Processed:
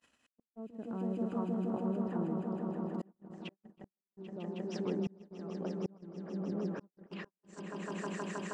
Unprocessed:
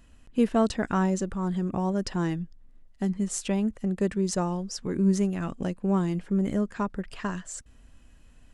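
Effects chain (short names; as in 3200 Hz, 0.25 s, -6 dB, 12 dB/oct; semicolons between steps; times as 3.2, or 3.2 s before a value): treble ducked by the level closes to 320 Hz, closed at -24 dBFS; weighting filter A; swelling echo 0.158 s, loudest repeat 5, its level -8 dB; upward compressor, threshold -35 dBFS; auto swell 0.8 s; gate -46 dBFS, range -47 dB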